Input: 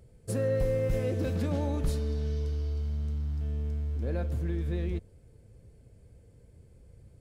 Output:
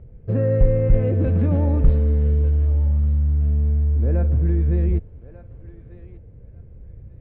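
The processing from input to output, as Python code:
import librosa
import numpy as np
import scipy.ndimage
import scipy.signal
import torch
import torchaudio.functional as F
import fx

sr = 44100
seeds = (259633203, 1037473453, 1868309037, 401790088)

y = scipy.signal.sosfilt(scipy.signal.butter(4, 2700.0, 'lowpass', fs=sr, output='sos'), x)
y = fx.tilt_eq(y, sr, slope=-2.5)
y = fx.echo_thinned(y, sr, ms=1192, feedback_pct=22, hz=580.0, wet_db=-14.5)
y = y * 10.0 ** (4.0 / 20.0)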